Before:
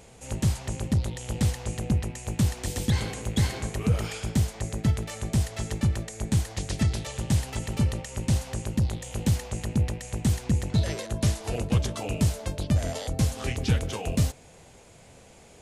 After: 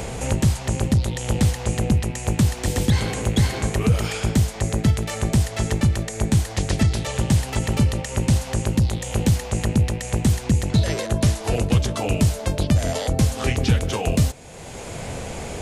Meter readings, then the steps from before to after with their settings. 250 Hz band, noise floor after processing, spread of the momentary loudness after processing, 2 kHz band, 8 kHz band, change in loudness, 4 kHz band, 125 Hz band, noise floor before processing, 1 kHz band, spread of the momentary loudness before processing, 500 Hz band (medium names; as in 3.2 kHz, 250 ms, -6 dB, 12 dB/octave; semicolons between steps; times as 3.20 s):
+6.5 dB, -34 dBFS, 4 LU, +7.5 dB, +6.5 dB, +6.0 dB, +6.5 dB, +6.0 dB, -52 dBFS, +8.5 dB, 4 LU, +8.5 dB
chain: three bands compressed up and down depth 70%; trim +6 dB